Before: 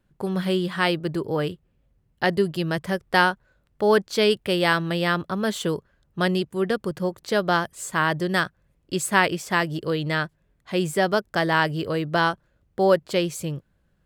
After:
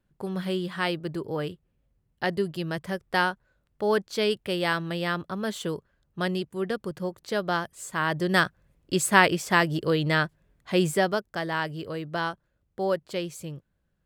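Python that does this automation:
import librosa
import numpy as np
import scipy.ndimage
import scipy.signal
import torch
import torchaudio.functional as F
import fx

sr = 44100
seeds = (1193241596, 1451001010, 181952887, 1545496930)

y = fx.gain(x, sr, db=fx.line((7.98, -5.5), (8.38, 1.0), (10.88, 1.0), (11.29, -8.0)))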